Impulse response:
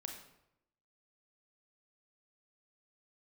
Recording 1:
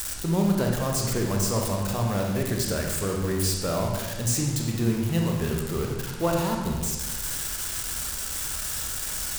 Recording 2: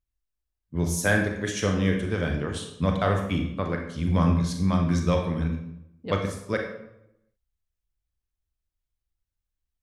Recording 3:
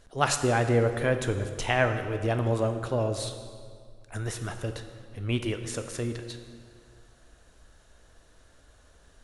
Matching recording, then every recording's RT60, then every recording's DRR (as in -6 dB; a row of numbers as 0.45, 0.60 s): 2; 1.4, 0.80, 2.0 s; 0.0, 2.0, 7.0 dB